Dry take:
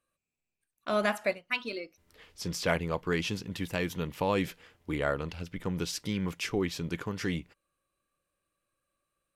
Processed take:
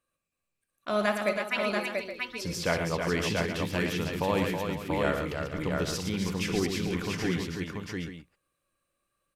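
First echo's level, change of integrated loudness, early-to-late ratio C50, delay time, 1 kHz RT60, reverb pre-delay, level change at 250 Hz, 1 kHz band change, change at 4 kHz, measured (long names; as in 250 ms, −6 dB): −12.0 dB, +2.5 dB, no reverb audible, 62 ms, no reverb audible, no reverb audible, +3.0 dB, +3.0 dB, +3.0 dB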